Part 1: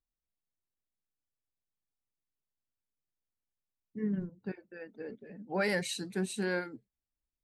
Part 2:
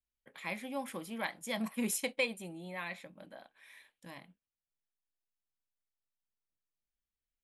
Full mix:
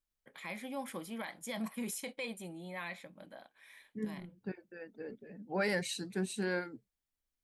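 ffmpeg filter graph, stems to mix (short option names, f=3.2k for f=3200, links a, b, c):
-filter_complex "[0:a]volume=-2dB[a];[1:a]bandreject=f=2.7k:w=15,alimiter=level_in=6.5dB:limit=-24dB:level=0:latency=1:release=29,volume=-6.5dB,volume=-0.5dB,asplit=2[b][c];[c]apad=whole_len=328074[d];[a][d]sidechaincompress=threshold=-54dB:ratio=8:attack=7.3:release=259[e];[e][b]amix=inputs=2:normalize=0"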